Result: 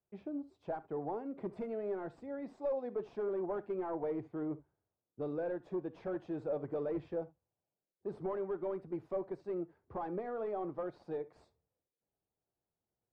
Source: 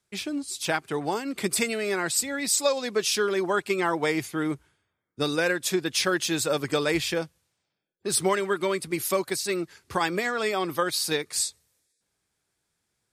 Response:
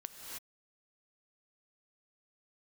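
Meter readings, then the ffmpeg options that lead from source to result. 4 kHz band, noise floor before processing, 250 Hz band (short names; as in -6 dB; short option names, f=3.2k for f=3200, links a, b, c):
under -40 dB, -79 dBFS, -11.0 dB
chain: -filter_complex "[0:a]volume=23dB,asoftclip=hard,volume=-23dB,lowpass=f=700:t=q:w=1.6[a];[1:a]atrim=start_sample=2205,atrim=end_sample=3528[b];[a][b]afir=irnorm=-1:irlink=0,volume=-6dB"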